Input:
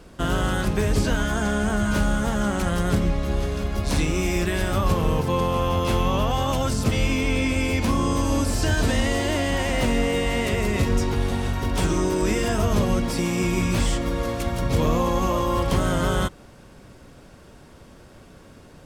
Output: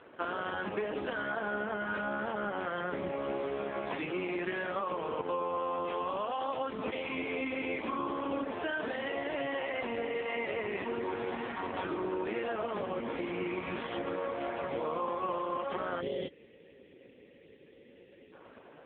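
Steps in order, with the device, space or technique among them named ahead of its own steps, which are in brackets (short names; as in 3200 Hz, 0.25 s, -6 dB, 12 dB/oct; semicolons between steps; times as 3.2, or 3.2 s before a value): 9.2–10.9 HPF 65 Hz 12 dB/oct; 16.01–18.33 spectral delete 580–1700 Hz; voicemail (BPF 380–2800 Hz; compressor 8:1, threshold -31 dBFS, peak gain reduction 10 dB; gain +2 dB; AMR-NB 5.15 kbps 8000 Hz)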